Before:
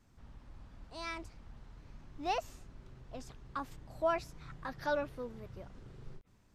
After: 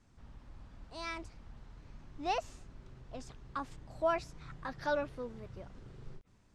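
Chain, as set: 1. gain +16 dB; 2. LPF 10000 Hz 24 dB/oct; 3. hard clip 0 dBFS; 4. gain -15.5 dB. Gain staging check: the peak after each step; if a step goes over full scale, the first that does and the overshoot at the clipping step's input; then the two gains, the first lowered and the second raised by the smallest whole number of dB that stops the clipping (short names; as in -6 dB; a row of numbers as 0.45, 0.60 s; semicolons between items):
-5.5, -5.5, -5.5, -21.0 dBFS; no overload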